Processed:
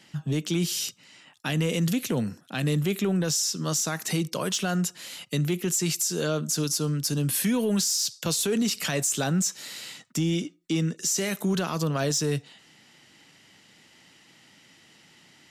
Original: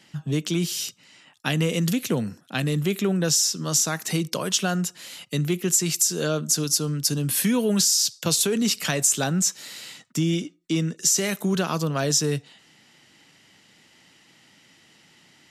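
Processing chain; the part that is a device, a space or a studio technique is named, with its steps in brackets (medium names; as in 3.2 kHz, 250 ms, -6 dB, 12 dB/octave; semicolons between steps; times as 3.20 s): soft clipper into limiter (saturation -11 dBFS, distortion -24 dB; peak limiter -18 dBFS, peak gain reduction 6.5 dB)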